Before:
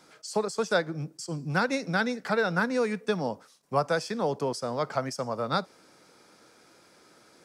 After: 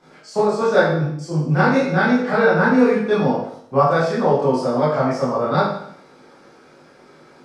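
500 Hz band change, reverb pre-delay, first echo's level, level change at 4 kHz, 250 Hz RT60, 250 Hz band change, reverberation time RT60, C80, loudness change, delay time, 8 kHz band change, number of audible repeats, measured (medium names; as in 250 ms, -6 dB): +11.5 dB, 20 ms, no echo, +3.0 dB, 0.70 s, +13.0 dB, 0.65 s, 5.5 dB, +11.0 dB, no echo, no reading, no echo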